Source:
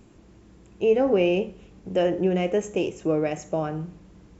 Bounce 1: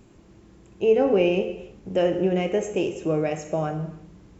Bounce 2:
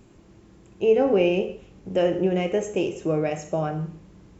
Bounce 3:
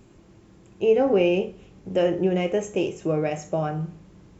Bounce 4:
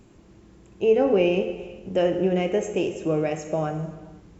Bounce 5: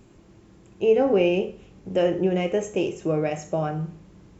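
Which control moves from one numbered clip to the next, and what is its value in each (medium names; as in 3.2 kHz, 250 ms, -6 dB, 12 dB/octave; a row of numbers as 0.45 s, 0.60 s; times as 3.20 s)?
gated-style reverb, gate: 360 ms, 210 ms, 90 ms, 540 ms, 130 ms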